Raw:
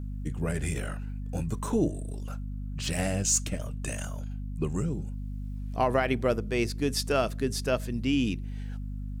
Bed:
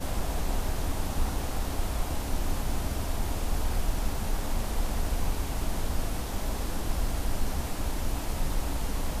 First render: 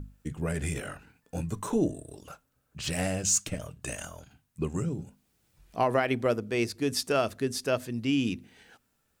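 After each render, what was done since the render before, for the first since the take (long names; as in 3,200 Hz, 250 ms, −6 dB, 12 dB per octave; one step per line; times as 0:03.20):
mains-hum notches 50/100/150/200/250 Hz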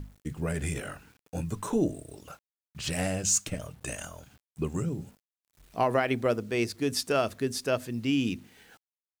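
bit reduction 10 bits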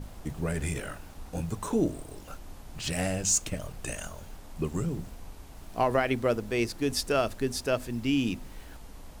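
mix in bed −16 dB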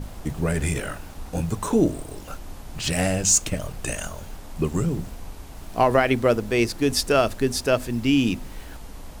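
level +7 dB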